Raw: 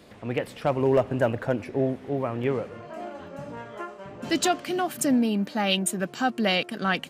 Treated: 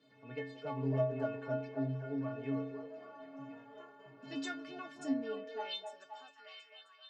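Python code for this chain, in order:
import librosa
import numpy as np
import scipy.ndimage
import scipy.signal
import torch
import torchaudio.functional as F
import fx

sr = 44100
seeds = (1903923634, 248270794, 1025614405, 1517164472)

y = fx.fade_out_tail(x, sr, length_s=1.8)
y = scipy.signal.sosfilt(scipy.signal.butter(4, 5500.0, 'lowpass', fs=sr, output='sos'), y)
y = fx.low_shelf(y, sr, hz=110.0, db=10.5)
y = fx.stiff_resonator(y, sr, f0_hz=130.0, decay_s=0.79, stiffness=0.03)
y = fx.echo_stepped(y, sr, ms=263, hz=550.0, octaves=0.7, feedback_pct=70, wet_db=-3)
y = fx.filter_sweep_highpass(y, sr, from_hz=210.0, to_hz=1200.0, start_s=5.05, end_s=6.48, q=0.99)
y = y * 10.0 ** (1.0 / 20.0)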